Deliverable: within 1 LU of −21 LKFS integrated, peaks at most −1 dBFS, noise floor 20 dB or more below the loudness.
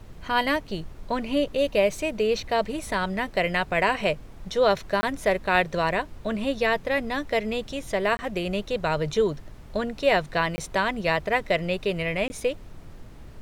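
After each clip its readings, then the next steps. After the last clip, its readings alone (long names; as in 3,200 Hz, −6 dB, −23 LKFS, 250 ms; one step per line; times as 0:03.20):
number of dropouts 4; longest dropout 20 ms; background noise floor −44 dBFS; target noise floor −46 dBFS; integrated loudness −25.5 LKFS; sample peak −6.0 dBFS; target loudness −21.0 LKFS
→ repair the gap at 0:05.01/0:08.17/0:10.56/0:12.28, 20 ms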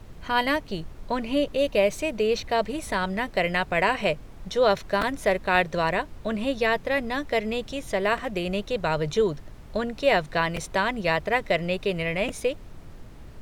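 number of dropouts 0; background noise floor −44 dBFS; target noise floor −46 dBFS
→ noise reduction from a noise print 6 dB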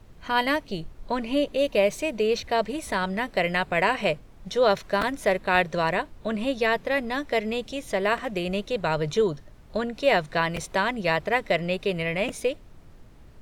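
background noise floor −49 dBFS; integrated loudness −25.5 LKFS; sample peak −6.0 dBFS; target loudness −21.0 LKFS
→ level +4.5 dB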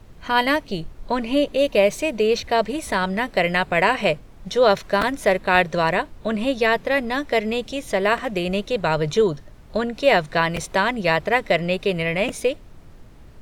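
integrated loudness −21.0 LKFS; sample peak −1.5 dBFS; background noise floor −44 dBFS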